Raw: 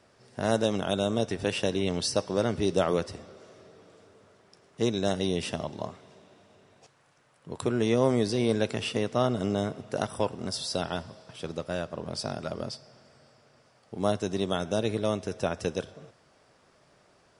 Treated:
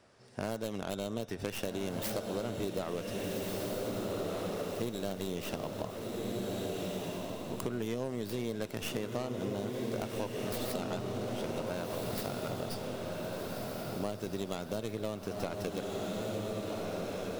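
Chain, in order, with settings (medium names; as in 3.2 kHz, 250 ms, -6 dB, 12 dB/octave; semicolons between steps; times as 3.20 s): tracing distortion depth 0.4 ms; on a send: echo that smears into a reverb 1558 ms, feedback 45%, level -4 dB; on the sum: compression 6:1, threshold -30 dBFS, peak gain reduction 13 dB; trim -2 dB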